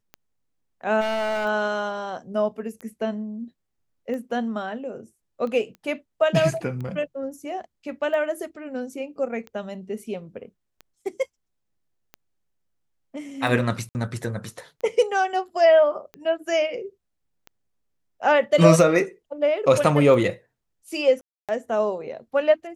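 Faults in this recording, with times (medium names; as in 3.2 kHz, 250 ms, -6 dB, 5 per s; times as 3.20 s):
tick 45 rpm -24 dBFS
1.00–1.46 s: clipped -22.5 dBFS
5.75 s: pop -30 dBFS
13.89–13.95 s: dropout 59 ms
21.21–21.49 s: dropout 277 ms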